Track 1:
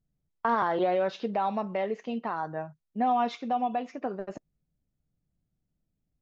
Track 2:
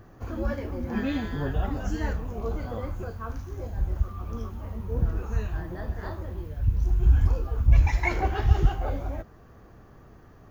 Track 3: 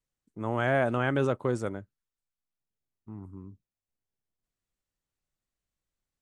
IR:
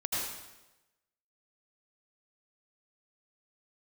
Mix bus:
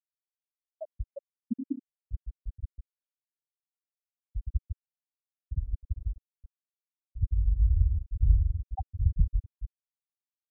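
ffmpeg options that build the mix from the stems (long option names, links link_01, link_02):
-filter_complex "[0:a]aeval=exprs='val(0)+0.00158*(sin(2*PI*60*n/s)+sin(2*PI*2*60*n/s)/2+sin(2*PI*3*60*n/s)/3+sin(2*PI*4*60*n/s)/4+sin(2*PI*5*60*n/s)/5)':channel_layout=same,volume=-12dB,asplit=2[link_01][link_02];[link_02]volume=-5.5dB[link_03];[1:a]lowpass=1800,bandreject=frequency=60:width_type=h:width=6,bandreject=frequency=120:width_type=h:width=6,bandreject=frequency=180:width_type=h:width=6,bandreject=frequency=240:width_type=h:width=6,bandreject=frequency=300:width_type=h:width=6,adelay=550,volume=-5dB,asplit=3[link_04][link_05][link_06];[link_05]volume=-16.5dB[link_07];[link_06]volume=-4.5dB[link_08];[2:a]volume=-4.5dB,asplit=2[link_09][link_10];[link_10]volume=-15.5dB[link_11];[3:a]atrim=start_sample=2205[link_12];[link_07][link_11]amix=inputs=2:normalize=0[link_13];[link_13][link_12]afir=irnorm=-1:irlink=0[link_14];[link_03][link_08]amix=inputs=2:normalize=0,aecho=0:1:152:1[link_15];[link_01][link_04][link_09][link_14][link_15]amix=inputs=5:normalize=0,highshelf=frequency=4500:width_type=q:width=3:gain=10,afftfilt=real='re*gte(hypot(re,im),0.398)':imag='im*gte(hypot(re,im),0.398)':win_size=1024:overlap=0.75,adynamicequalizer=threshold=0.00447:dfrequency=310:dqfactor=0.87:tfrequency=310:tqfactor=0.87:attack=5:release=100:ratio=0.375:range=2.5:mode=boostabove:tftype=bell"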